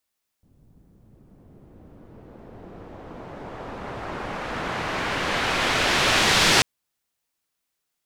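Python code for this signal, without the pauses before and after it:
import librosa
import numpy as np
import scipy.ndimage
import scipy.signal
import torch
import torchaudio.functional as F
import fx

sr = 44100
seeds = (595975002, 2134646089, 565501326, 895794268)

y = fx.riser_noise(sr, seeds[0], length_s=6.19, colour='white', kind='lowpass', start_hz=140.0, end_hz=4600.0, q=0.76, swell_db=25.5, law='exponential')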